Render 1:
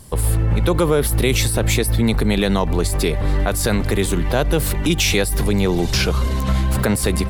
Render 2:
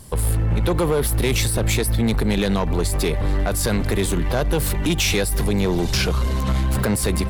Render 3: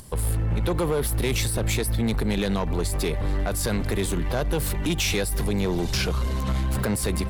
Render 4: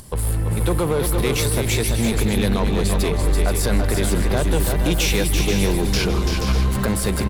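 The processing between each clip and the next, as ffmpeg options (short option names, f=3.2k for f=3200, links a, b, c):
-af "asoftclip=type=tanh:threshold=-13dB"
-af "acompressor=mode=upward:threshold=-37dB:ratio=2.5,volume=-4.5dB"
-af "aecho=1:1:159|337|480|596:0.158|0.531|0.422|0.251,volume=3dB"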